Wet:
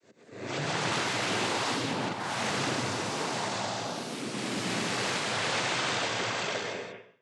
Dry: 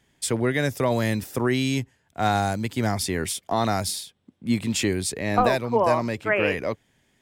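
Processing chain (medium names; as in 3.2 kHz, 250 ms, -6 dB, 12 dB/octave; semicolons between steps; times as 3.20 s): spectral blur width 671 ms; high-pass 320 Hz 6 dB/octave; expander -30 dBFS; slow attack 363 ms; integer overflow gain 29 dB; noise-vocoded speech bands 16; distance through air 70 m; gated-style reverb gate 210 ms rising, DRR 4.5 dB; ever faster or slower copies 191 ms, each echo +2 st, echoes 3; trim +3.5 dB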